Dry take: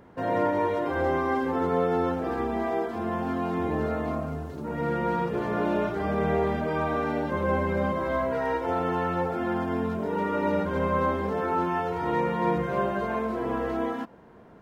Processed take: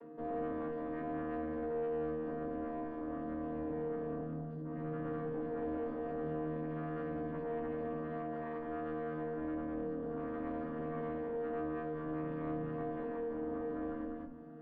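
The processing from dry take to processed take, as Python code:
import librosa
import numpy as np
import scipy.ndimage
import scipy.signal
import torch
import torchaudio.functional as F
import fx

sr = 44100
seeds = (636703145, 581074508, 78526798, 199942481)

y = fx.chord_vocoder(x, sr, chord='bare fifth', root=51)
y = fx.bandpass_q(y, sr, hz=270.0, q=1.6)
y = np.diff(y, prepend=0.0)
y = y + 0.9 * np.pad(y, (int(7.1 * sr / 1000.0), 0))[:len(y)]
y = fx.tube_stage(y, sr, drive_db=51.0, bias=0.7)
y = fx.air_absorb(y, sr, metres=220.0)
y = y + 10.0 ** (-6.5 / 20.0) * np.pad(y, (int(198 * sr / 1000.0), 0))[:len(y)]
y = fx.room_shoebox(y, sr, seeds[0], volume_m3=150.0, walls='furnished', distance_m=0.75)
y = fx.env_flatten(y, sr, amount_pct=50)
y = y * librosa.db_to_amplitude(17.5)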